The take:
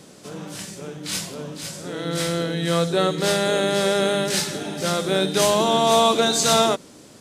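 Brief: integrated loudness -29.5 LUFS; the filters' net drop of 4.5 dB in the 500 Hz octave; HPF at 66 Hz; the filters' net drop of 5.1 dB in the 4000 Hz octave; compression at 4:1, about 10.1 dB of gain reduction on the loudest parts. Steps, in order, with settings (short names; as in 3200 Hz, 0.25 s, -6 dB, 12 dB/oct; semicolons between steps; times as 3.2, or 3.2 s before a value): HPF 66 Hz; bell 500 Hz -6 dB; bell 4000 Hz -6 dB; compressor 4:1, threshold -28 dBFS; gain +2 dB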